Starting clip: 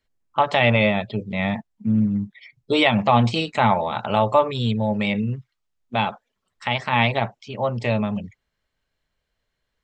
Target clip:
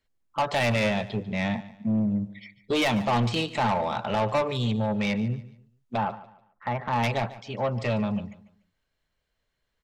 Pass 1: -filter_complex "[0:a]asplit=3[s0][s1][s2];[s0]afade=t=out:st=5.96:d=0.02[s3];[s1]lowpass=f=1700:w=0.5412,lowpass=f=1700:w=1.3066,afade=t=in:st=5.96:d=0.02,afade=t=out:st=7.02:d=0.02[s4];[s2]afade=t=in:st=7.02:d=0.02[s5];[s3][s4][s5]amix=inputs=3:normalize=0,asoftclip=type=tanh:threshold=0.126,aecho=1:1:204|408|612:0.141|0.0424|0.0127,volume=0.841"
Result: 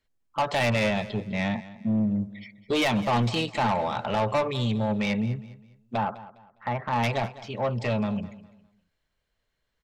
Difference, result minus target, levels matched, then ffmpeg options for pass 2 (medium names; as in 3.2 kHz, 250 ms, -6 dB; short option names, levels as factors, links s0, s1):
echo 59 ms late
-filter_complex "[0:a]asplit=3[s0][s1][s2];[s0]afade=t=out:st=5.96:d=0.02[s3];[s1]lowpass=f=1700:w=0.5412,lowpass=f=1700:w=1.3066,afade=t=in:st=5.96:d=0.02,afade=t=out:st=7.02:d=0.02[s4];[s2]afade=t=in:st=7.02:d=0.02[s5];[s3][s4][s5]amix=inputs=3:normalize=0,asoftclip=type=tanh:threshold=0.126,aecho=1:1:145|290|435:0.141|0.0424|0.0127,volume=0.841"